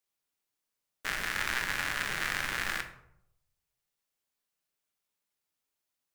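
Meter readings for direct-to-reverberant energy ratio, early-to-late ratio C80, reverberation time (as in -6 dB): 5.5 dB, 13.5 dB, 0.75 s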